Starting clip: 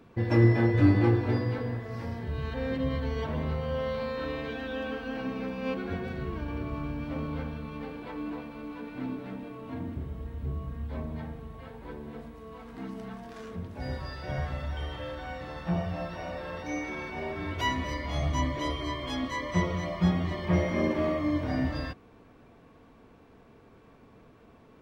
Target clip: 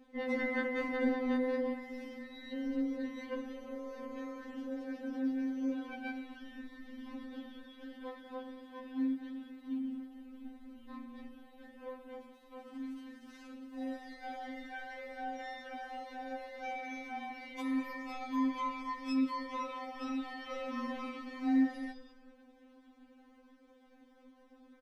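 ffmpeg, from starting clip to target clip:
-filter_complex "[0:a]asetrate=45392,aresample=44100,atempo=0.971532,asplit=4[a][b][c][d];[b]adelay=201,afreqshift=-42,volume=-16dB[e];[c]adelay=402,afreqshift=-84,volume=-25.6dB[f];[d]adelay=603,afreqshift=-126,volume=-35.3dB[g];[a][e][f][g]amix=inputs=4:normalize=0,afftfilt=real='re*3.46*eq(mod(b,12),0)':imag='im*3.46*eq(mod(b,12),0)':win_size=2048:overlap=0.75,volume=-3.5dB"

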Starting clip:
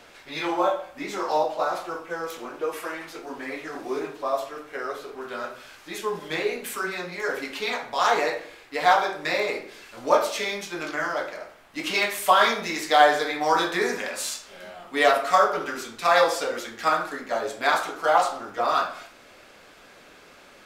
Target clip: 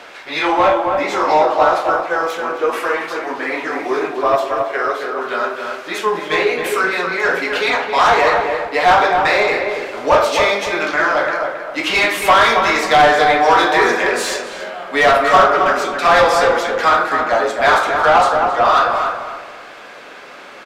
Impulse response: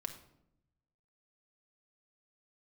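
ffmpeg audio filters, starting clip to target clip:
-filter_complex "[0:a]asplit=2[a][b];[b]highpass=f=720:p=1,volume=21dB,asoftclip=type=tanh:threshold=-3dB[c];[a][c]amix=inputs=2:normalize=0,lowpass=f=2.2k:p=1,volume=-6dB,asplit=2[d][e];[e]adelay=270,lowpass=f=1.6k:p=1,volume=-4dB,asplit=2[f][g];[g]adelay=270,lowpass=f=1.6k:p=1,volume=0.35,asplit=2[h][i];[i]adelay=270,lowpass=f=1.6k:p=1,volume=0.35,asplit=2[j][k];[k]adelay=270,lowpass=f=1.6k:p=1,volume=0.35[l];[d][f][h][j][l]amix=inputs=5:normalize=0,volume=1dB"

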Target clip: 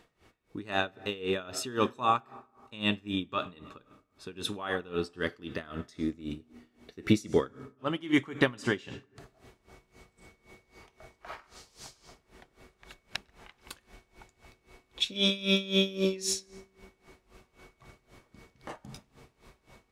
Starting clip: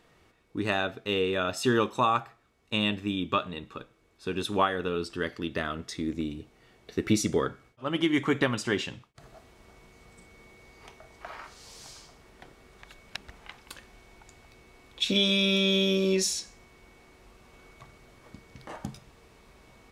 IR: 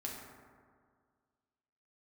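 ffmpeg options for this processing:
-filter_complex "[0:a]asplit=2[a][b];[1:a]atrim=start_sample=2205,adelay=102[c];[b][c]afir=irnorm=-1:irlink=0,volume=-19dB[d];[a][d]amix=inputs=2:normalize=0,aeval=exprs='val(0)*pow(10,-20*(0.5-0.5*cos(2*PI*3.8*n/s))/20)':c=same,volume=2dB"

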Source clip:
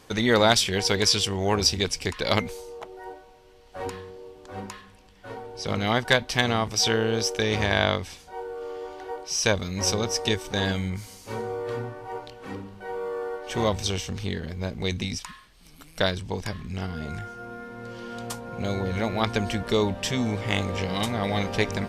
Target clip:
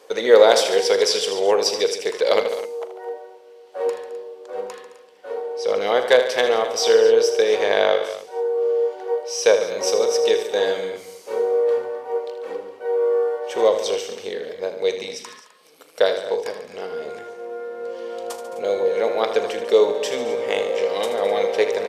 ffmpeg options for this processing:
-af "highpass=f=480:t=q:w=5.4,aecho=1:1:40|79|143|215|257:0.211|0.316|0.211|0.15|0.158,volume=-1dB"

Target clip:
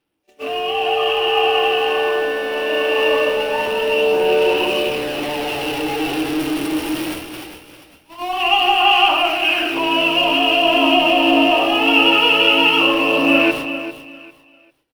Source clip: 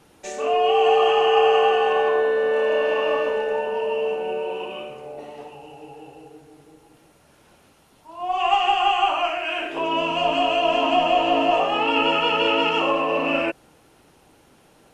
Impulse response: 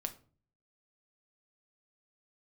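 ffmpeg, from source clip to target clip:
-filter_complex "[0:a]aeval=exprs='val(0)+0.5*0.0376*sgn(val(0))':c=same,superequalizer=6b=2.24:15b=0.447,dynaudnorm=f=400:g=7:m=12dB,agate=range=-41dB:threshold=-24dB:ratio=16:detection=peak,equalizer=f=2.8k:t=o:w=0.55:g=9,bandreject=f=50:t=h:w=6,bandreject=f=100:t=h:w=6,bandreject=f=150:t=h:w=6,bandreject=f=200:t=h:w=6,asplit=2[a][b];[b]aecho=0:1:398|796|1194:0.282|0.0733|0.0191[c];[a][c]amix=inputs=2:normalize=0,aphaser=in_gain=1:out_gain=1:delay=3.3:decay=0.24:speed=0.22:type=sinusoidal,volume=-4.5dB"

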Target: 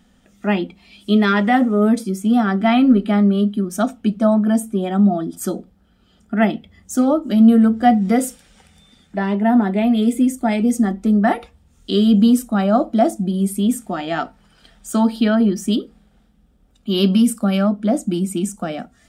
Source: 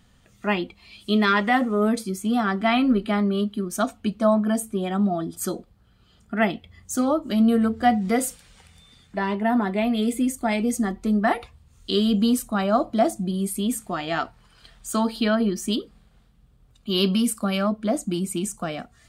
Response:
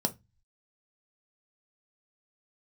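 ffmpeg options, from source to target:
-filter_complex "[0:a]asplit=2[a][b];[1:a]atrim=start_sample=2205,highshelf=f=4.2k:g=-9[c];[b][c]afir=irnorm=-1:irlink=0,volume=-12dB[d];[a][d]amix=inputs=2:normalize=0"

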